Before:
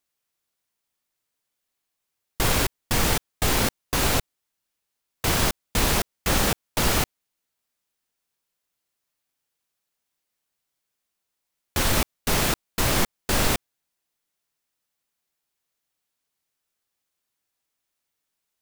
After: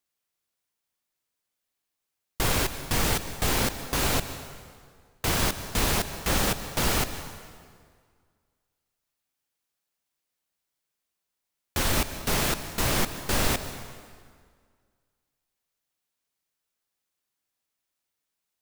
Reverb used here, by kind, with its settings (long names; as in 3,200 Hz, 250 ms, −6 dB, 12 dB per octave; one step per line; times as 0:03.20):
dense smooth reverb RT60 1.9 s, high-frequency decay 0.8×, pre-delay 115 ms, DRR 11 dB
level −3 dB